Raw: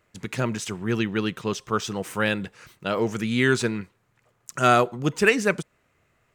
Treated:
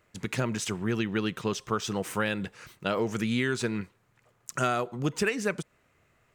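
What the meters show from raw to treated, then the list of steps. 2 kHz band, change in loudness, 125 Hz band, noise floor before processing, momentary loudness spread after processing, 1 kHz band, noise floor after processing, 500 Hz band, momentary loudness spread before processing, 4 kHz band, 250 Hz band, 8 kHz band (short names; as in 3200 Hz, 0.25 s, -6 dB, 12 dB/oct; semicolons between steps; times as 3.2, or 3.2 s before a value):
-7.0 dB, -6.0 dB, -4.0 dB, -69 dBFS, 10 LU, -7.5 dB, -69 dBFS, -6.0 dB, 14 LU, -4.5 dB, -4.0 dB, -2.5 dB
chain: compressor 6:1, threshold -24 dBFS, peak gain reduction 11.5 dB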